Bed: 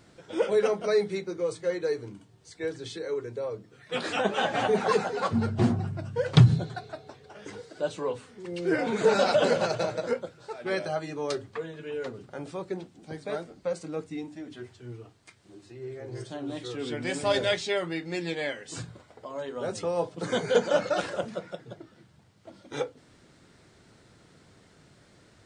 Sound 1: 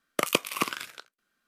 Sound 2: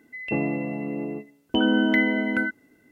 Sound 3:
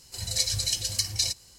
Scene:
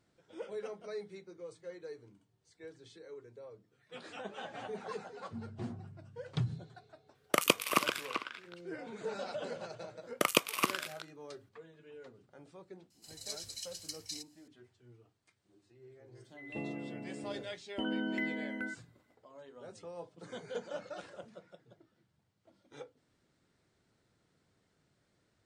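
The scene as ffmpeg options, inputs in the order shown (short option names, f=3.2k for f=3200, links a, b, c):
-filter_complex "[1:a]asplit=2[a][b];[0:a]volume=-17.5dB[c];[a]asplit=2[d][e];[e]adelay=390,highpass=300,lowpass=3.4k,asoftclip=type=hard:threshold=-13dB,volume=-6dB[f];[d][f]amix=inputs=2:normalize=0[g];[3:a]lowshelf=f=470:g=-12[h];[g]atrim=end=1.47,asetpts=PTS-STARTPTS,volume=-2dB,afade=t=in:d=0.004:c=hsin,afade=t=out:st=1.466:d=0.004:c=hsin,adelay=7150[i];[b]atrim=end=1.47,asetpts=PTS-STARTPTS,volume=-3dB,afade=t=in:d=0.004:c=hsin,afade=t=out:st=1.466:d=0.004:c=hsin,adelay=441882S[j];[h]atrim=end=1.58,asetpts=PTS-STARTPTS,volume=-16.5dB,afade=t=in:d=0.004:c=hsin,afade=t=out:st=1.576:d=0.004:c=hsin,adelay=12900[k];[2:a]atrim=end=2.91,asetpts=PTS-STARTPTS,volume=-15dB,afade=t=in:d=0.004:c=hsin,afade=t=out:st=2.906:d=0.004:c=hsin,adelay=16240[l];[c][i][j][k][l]amix=inputs=5:normalize=0"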